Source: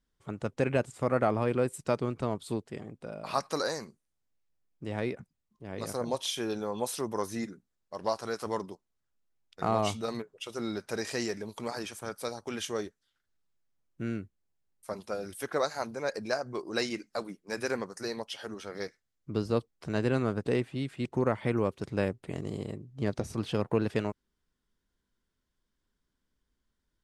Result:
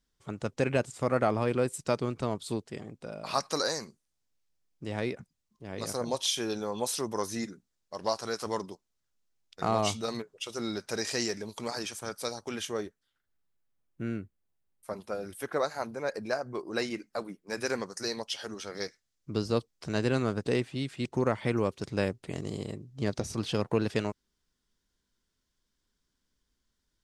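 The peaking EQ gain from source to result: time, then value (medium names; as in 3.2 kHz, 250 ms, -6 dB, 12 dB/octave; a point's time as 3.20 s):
peaking EQ 5.6 kHz 1.6 oct
12.37 s +6.5 dB
12.79 s -4 dB
17.37 s -4 dB
17.79 s +8 dB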